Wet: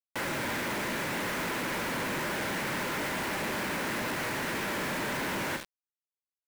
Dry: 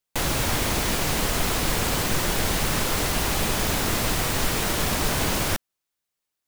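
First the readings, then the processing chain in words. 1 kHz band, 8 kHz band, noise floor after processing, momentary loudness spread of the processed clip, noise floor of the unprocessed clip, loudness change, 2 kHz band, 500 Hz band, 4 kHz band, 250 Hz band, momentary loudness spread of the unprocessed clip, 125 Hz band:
-5.5 dB, -13.5 dB, under -85 dBFS, 1 LU, -84 dBFS, -8.0 dB, -3.0 dB, -6.0 dB, -10.5 dB, -6.0 dB, 0 LU, -13.0 dB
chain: cabinet simulation 260–2200 Hz, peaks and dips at 310 Hz -3 dB, 450 Hz -6 dB, 720 Hz -10 dB, 1.2 kHz -7 dB; gated-style reverb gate 130 ms flat, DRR 9 dB; companded quantiser 2-bit; trim -6 dB

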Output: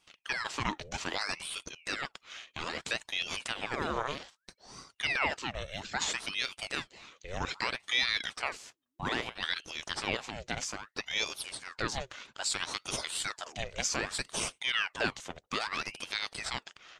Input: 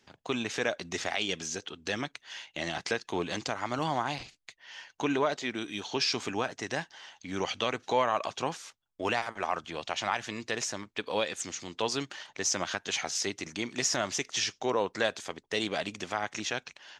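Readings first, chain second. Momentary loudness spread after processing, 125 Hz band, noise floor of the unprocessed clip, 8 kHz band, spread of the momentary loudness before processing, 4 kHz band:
10 LU, -3.0 dB, -72 dBFS, -3.0 dB, 9 LU, +0.5 dB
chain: band-stop 4.7 kHz; ring modulator with a swept carrier 1.6 kHz, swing 85%, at 0.62 Hz

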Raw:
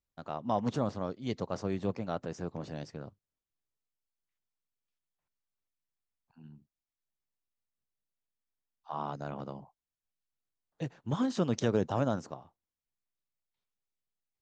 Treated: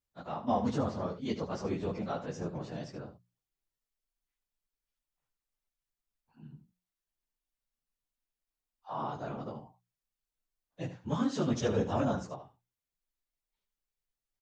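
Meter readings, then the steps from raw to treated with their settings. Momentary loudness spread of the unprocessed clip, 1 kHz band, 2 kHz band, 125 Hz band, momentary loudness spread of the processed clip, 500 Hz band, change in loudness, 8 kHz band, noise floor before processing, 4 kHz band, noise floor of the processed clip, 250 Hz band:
15 LU, +0.5 dB, 0.0 dB, -1.0 dB, 16 LU, -0.5 dB, 0.0 dB, +0.5 dB, under -85 dBFS, +0.5 dB, under -85 dBFS, 0.0 dB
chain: phase randomisation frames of 50 ms; hum notches 60/120/180 Hz; delay 74 ms -11.5 dB

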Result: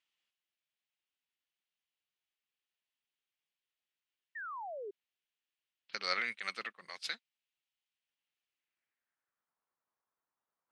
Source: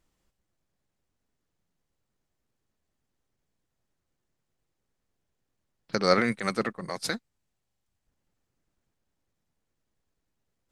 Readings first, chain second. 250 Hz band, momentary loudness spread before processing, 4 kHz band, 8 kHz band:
-27.5 dB, 11 LU, -5.5 dB, -13.0 dB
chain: band-pass sweep 2.9 kHz -> 1.1 kHz, 8.51–9.60 s; painted sound fall, 4.35–4.91 s, 380–1900 Hz -44 dBFS; trim +1.5 dB

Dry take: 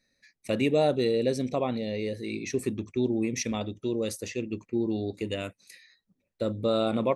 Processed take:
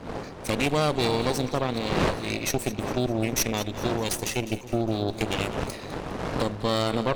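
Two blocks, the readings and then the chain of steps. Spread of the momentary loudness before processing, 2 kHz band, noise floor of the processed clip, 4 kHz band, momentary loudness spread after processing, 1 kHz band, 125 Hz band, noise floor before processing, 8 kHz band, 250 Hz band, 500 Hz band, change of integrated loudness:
9 LU, +7.5 dB, -39 dBFS, +7.5 dB, 8 LU, +7.0 dB, +6.0 dB, -79 dBFS, +8.0 dB, +0.5 dB, 0.0 dB, +2.0 dB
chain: median filter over 3 samples; wind noise 540 Hz -34 dBFS; recorder AGC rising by 8.4 dB/s; treble shelf 3 kHz +11.5 dB; in parallel at +0.5 dB: compression, threshold -32 dBFS, peak gain reduction 14.5 dB; on the sum: Chebyshev shaper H 6 -11 dB, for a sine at -6.5 dBFS; on a send: two-band feedback delay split 790 Hz, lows 273 ms, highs 204 ms, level -14.5 dB; on the sum: trim -6 dB

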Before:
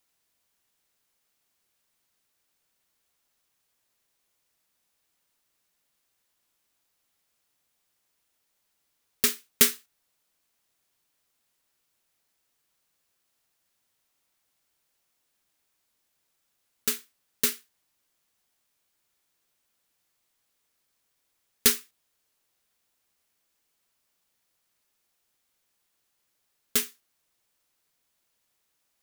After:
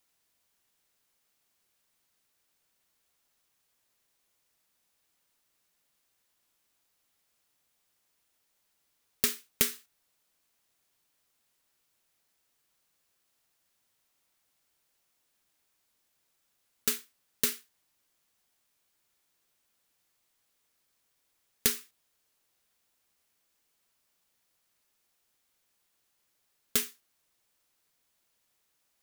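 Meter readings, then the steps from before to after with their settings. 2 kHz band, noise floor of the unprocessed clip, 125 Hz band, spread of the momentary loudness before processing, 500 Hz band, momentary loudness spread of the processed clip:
-5.0 dB, -76 dBFS, -1.0 dB, 15 LU, -5.0 dB, 11 LU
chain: compression 10:1, threshold -22 dBFS, peak gain reduction 9.5 dB

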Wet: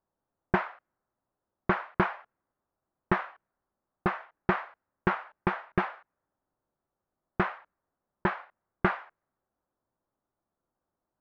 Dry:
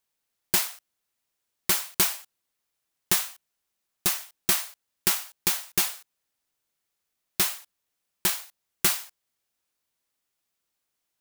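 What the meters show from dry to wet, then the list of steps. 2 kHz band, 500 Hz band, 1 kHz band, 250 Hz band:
+1.0 dB, +7.5 dB, +7.0 dB, +7.5 dB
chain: level-controlled noise filter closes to 960 Hz, open at -24.5 dBFS; low-pass 1.6 kHz 24 dB/octave; band-stop 450 Hz, Q 13; trim +7.5 dB

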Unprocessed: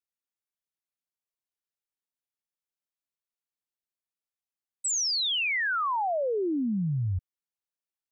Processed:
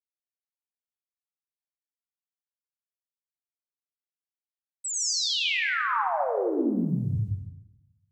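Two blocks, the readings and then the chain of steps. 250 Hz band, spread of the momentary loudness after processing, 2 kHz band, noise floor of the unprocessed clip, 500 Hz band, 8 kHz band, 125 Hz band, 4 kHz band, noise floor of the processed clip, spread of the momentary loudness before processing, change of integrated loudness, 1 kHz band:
+2.0 dB, 10 LU, +1.0 dB, under -85 dBFS, +1.0 dB, +0.5 dB, +1.0 dB, +0.5 dB, under -85 dBFS, 7 LU, +1.0 dB, +1.5 dB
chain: small samples zeroed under -55.5 dBFS; plate-style reverb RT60 1.1 s, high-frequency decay 0.75×, pre-delay 80 ms, DRR -3 dB; trim -3.5 dB

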